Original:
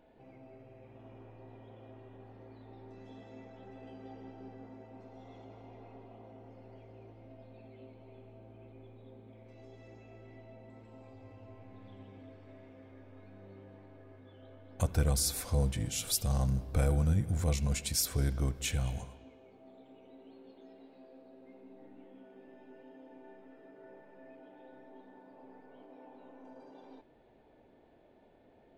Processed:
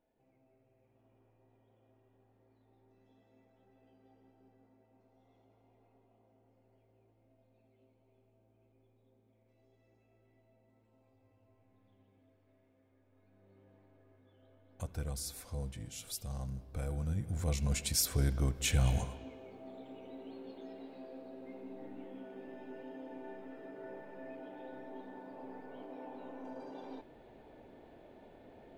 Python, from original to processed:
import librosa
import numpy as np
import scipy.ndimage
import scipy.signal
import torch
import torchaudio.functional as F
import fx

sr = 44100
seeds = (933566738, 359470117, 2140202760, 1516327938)

y = fx.gain(x, sr, db=fx.line((13.02, -17.0), (13.69, -10.5), (16.79, -10.5), (17.81, 0.0), (18.54, 0.0), (18.95, 6.5)))